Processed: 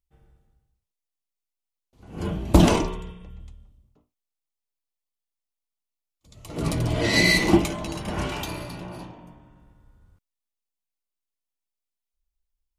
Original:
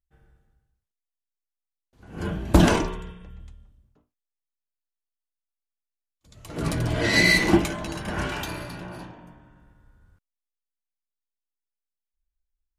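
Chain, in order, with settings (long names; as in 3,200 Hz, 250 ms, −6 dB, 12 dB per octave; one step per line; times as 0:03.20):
parametric band 1,600 Hz −10 dB 0.38 octaves
level +1 dB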